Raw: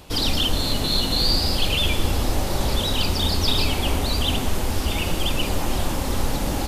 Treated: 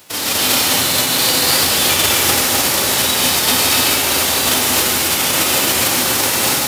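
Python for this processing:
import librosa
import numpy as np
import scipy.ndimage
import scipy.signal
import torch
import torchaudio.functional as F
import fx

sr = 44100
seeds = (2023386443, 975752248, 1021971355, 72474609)

y = fx.envelope_flatten(x, sr, power=0.3)
y = scipy.signal.sosfilt(scipy.signal.butter(4, 95.0, 'highpass', fs=sr, output='sos'), y)
y = fx.rev_gated(y, sr, seeds[0], gate_ms=310, shape='rising', drr_db=-3.5)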